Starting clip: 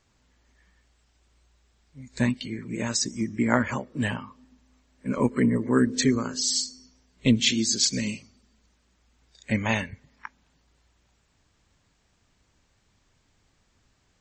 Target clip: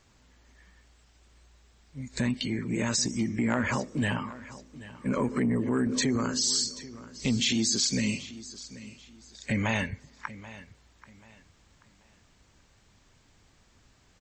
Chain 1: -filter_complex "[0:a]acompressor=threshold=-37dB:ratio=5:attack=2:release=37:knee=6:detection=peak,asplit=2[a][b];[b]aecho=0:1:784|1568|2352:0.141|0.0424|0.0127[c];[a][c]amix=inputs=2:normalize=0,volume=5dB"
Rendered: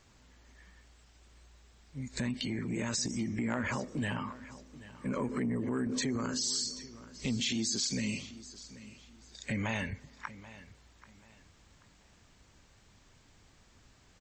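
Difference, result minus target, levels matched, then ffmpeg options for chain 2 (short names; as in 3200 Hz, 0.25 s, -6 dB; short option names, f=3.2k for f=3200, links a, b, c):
compressor: peak gain reduction +6.5 dB
-filter_complex "[0:a]acompressor=threshold=-29dB:ratio=5:attack=2:release=37:knee=6:detection=peak,asplit=2[a][b];[b]aecho=0:1:784|1568|2352:0.141|0.0424|0.0127[c];[a][c]amix=inputs=2:normalize=0,volume=5dB"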